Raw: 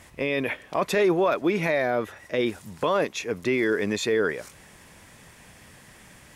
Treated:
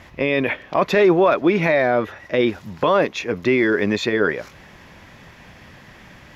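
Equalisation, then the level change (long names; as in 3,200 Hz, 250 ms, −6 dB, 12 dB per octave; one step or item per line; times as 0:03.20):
moving average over 5 samples
notch filter 450 Hz, Q 15
+7.0 dB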